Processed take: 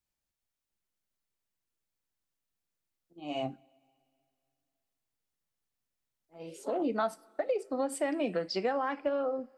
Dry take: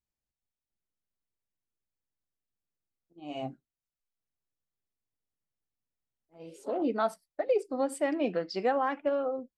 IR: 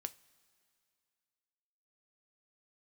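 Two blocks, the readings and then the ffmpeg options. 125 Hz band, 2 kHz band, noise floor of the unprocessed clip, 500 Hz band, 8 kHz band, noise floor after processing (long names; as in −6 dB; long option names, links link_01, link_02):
0.0 dB, −1.0 dB, below −85 dBFS, −2.0 dB, +2.0 dB, below −85 dBFS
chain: -filter_complex "[0:a]acrossover=split=170[link_01][link_02];[link_02]acompressor=threshold=-32dB:ratio=3[link_03];[link_01][link_03]amix=inputs=2:normalize=0,asplit=2[link_04][link_05];[1:a]atrim=start_sample=2205,lowshelf=frequency=490:gain=-7[link_06];[link_05][link_06]afir=irnorm=-1:irlink=0,volume=7dB[link_07];[link_04][link_07]amix=inputs=2:normalize=0,volume=-3.5dB"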